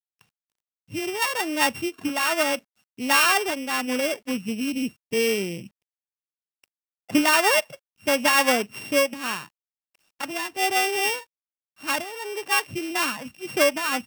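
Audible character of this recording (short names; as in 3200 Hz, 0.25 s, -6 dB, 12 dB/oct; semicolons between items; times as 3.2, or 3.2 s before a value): a buzz of ramps at a fixed pitch in blocks of 16 samples; tremolo triangle 0.74 Hz, depth 40%; a quantiser's noise floor 12-bit, dither none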